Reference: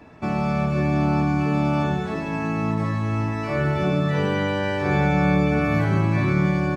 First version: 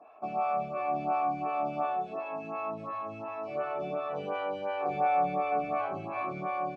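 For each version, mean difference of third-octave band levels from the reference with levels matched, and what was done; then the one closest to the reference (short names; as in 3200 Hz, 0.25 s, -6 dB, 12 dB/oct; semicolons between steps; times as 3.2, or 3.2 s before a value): 9.5 dB: vowel filter a; photocell phaser 2.8 Hz; gain +6 dB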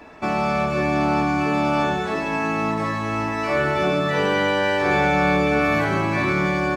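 5.0 dB: bell 120 Hz -14.5 dB 1.9 oct; in parallel at -7 dB: overloaded stage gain 24.5 dB; on the sum: gain +3.5 dB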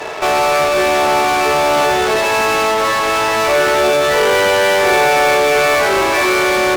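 13.5 dB: Chebyshev high-pass 380 Hz, order 5; in parallel at -10.5 dB: fuzz box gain 46 dB, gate -56 dBFS; on the sum: gain +7 dB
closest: second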